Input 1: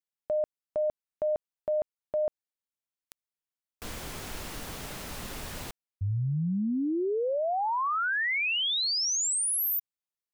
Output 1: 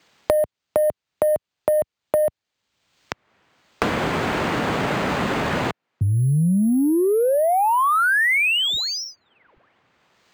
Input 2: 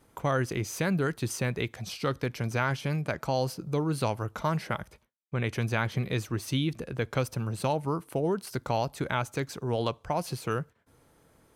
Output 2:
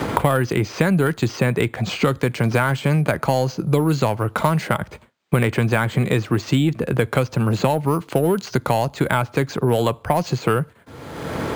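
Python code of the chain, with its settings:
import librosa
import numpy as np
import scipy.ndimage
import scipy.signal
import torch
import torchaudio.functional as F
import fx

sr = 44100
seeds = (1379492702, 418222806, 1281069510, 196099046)

p1 = scipy.signal.sosfilt(scipy.signal.butter(2, 81.0, 'highpass', fs=sr, output='sos'), x)
p2 = np.repeat(scipy.signal.resample_poly(p1, 1, 4), 4)[:len(p1)]
p3 = fx.high_shelf(p2, sr, hz=8800.0, db=-11.0)
p4 = 10.0 ** (-25.0 / 20.0) * np.tanh(p3 / 10.0 ** (-25.0 / 20.0))
p5 = p3 + F.gain(torch.from_numpy(p4), -4.5).numpy()
p6 = fx.band_squash(p5, sr, depth_pct=100)
y = F.gain(torch.from_numpy(p6), 7.0).numpy()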